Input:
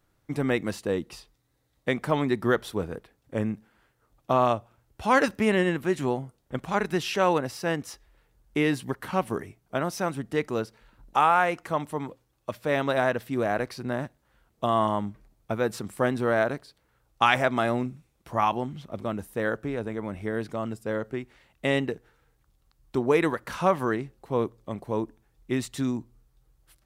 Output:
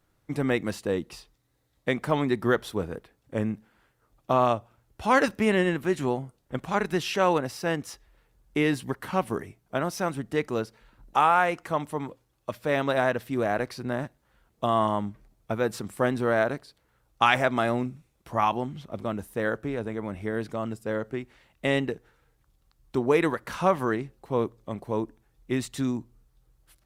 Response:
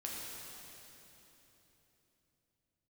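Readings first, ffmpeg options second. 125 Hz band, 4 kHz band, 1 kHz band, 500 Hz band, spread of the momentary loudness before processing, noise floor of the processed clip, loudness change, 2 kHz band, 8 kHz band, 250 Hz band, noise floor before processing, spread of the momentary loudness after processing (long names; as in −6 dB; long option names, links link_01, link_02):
0.0 dB, 0.0 dB, 0.0 dB, 0.0 dB, 12 LU, −70 dBFS, 0.0 dB, 0.0 dB, 0.0 dB, 0.0 dB, −71 dBFS, 12 LU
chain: -ar 48000 -c:a libopus -b:a 64k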